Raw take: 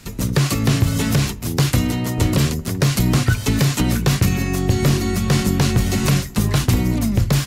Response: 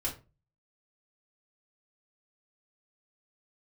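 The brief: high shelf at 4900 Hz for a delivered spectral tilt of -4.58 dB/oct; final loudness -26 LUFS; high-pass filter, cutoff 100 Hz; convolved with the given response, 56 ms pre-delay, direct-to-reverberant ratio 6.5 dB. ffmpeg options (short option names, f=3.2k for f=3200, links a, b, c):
-filter_complex "[0:a]highpass=100,highshelf=f=4.9k:g=4.5,asplit=2[a][b];[1:a]atrim=start_sample=2205,adelay=56[c];[b][c]afir=irnorm=-1:irlink=0,volume=-10dB[d];[a][d]amix=inputs=2:normalize=0,volume=-8dB"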